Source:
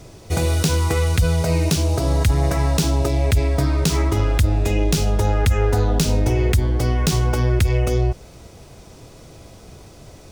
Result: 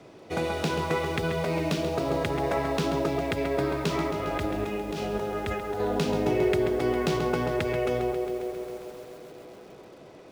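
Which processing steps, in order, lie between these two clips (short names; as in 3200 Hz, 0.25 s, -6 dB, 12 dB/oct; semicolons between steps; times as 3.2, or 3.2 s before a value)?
three-band isolator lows -23 dB, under 170 Hz, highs -16 dB, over 3600 Hz; 4.1–5.8 negative-ratio compressor -29 dBFS, ratio -1; narrowing echo 0.13 s, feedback 83%, band-pass 490 Hz, level -5 dB; lo-fi delay 0.135 s, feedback 80%, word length 7-bit, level -10.5 dB; gain -3.5 dB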